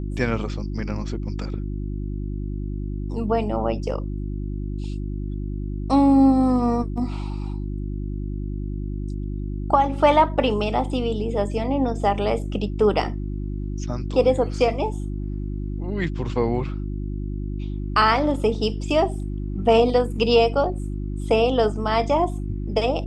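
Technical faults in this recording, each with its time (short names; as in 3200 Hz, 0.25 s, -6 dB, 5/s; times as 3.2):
hum 50 Hz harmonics 7 -28 dBFS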